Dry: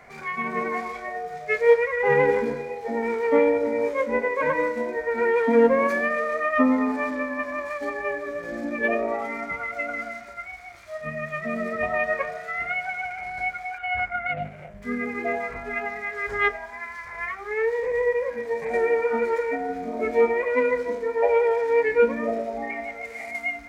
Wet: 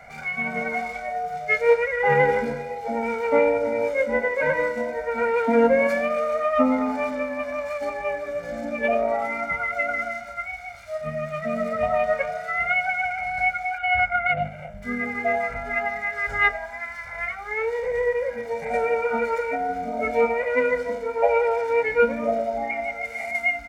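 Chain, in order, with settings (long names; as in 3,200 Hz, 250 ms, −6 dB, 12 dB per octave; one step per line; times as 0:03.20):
comb filter 1.4 ms, depth 90%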